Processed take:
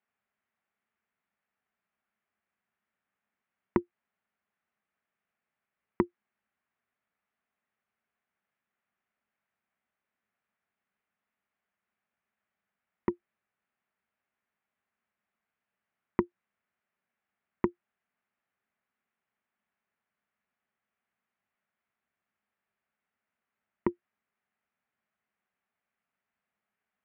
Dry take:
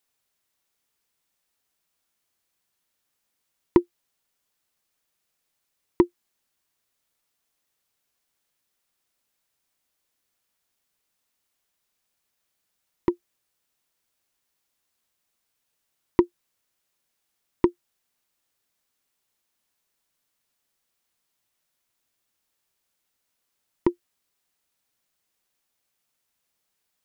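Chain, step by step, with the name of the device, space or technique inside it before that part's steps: bass amplifier (compressor 4:1, threshold -17 dBFS, peak gain reduction 5.5 dB; speaker cabinet 89–2200 Hz, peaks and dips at 89 Hz -5 dB, 140 Hz -8 dB, 210 Hz +5 dB, 310 Hz -10 dB, 500 Hz -7 dB, 960 Hz -4 dB)

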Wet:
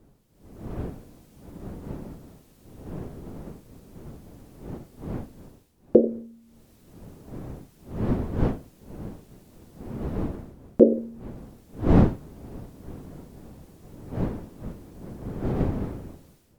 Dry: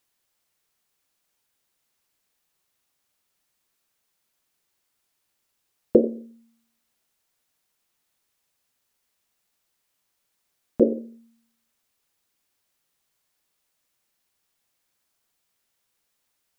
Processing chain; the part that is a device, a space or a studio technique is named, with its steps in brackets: smartphone video outdoors (wind noise 270 Hz -44 dBFS; AGC gain up to 14 dB; gain -1 dB; AAC 96 kbps 48000 Hz)

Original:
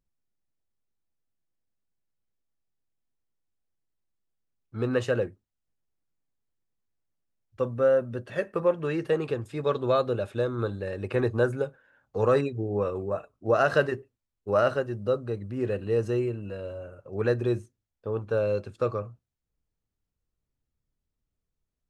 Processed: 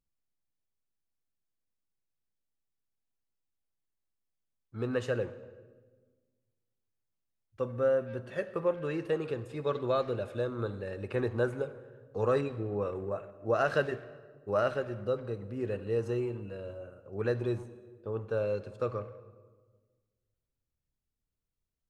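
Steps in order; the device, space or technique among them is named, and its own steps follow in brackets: saturated reverb return (on a send at -11.5 dB: reverb RT60 1.4 s, pre-delay 42 ms + soft clip -23.5 dBFS, distortion -11 dB); on the sum: gain -5.5 dB

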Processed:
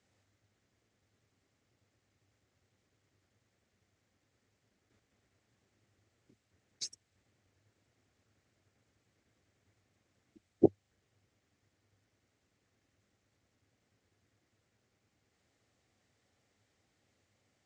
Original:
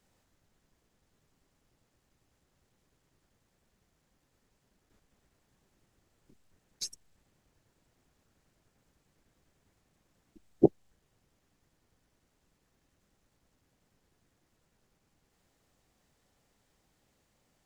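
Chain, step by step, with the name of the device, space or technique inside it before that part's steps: car door speaker (speaker cabinet 88–8000 Hz, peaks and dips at 100 Hz +10 dB, 160 Hz -7 dB, 950 Hz -5 dB, 2100 Hz +4 dB); gain -2.5 dB

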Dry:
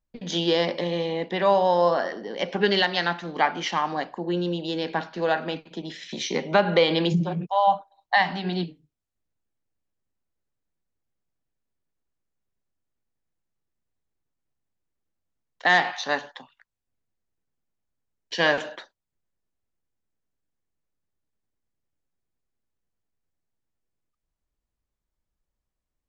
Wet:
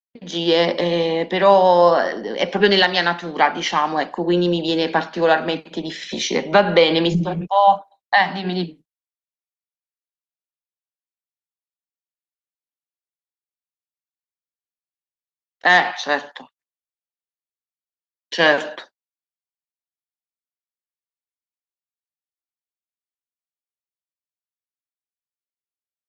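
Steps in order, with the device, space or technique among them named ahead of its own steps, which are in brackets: 16–18.39 gate with hold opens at -55 dBFS; video call (HPF 170 Hz 24 dB/oct; AGC gain up to 10 dB; gate -41 dBFS, range -53 dB; Opus 32 kbps 48000 Hz)

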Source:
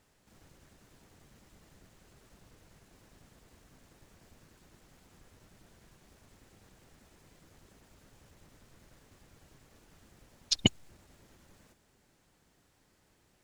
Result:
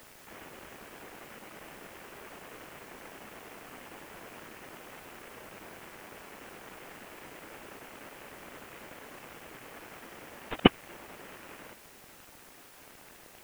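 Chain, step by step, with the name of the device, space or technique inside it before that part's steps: army field radio (BPF 340–3100 Hz; CVSD 16 kbps; white noise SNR 16 dB); gain +16.5 dB

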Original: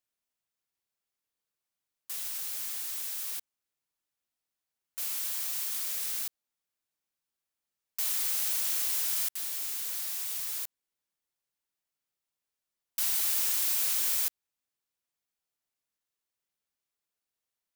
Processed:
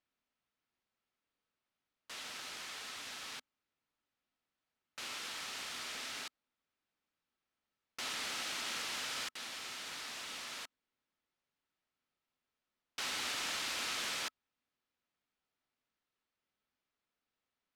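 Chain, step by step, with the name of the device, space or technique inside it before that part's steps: inside a cardboard box (LPF 3500 Hz 12 dB/oct; small resonant body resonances 250/1300 Hz, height 6 dB); gain +4 dB

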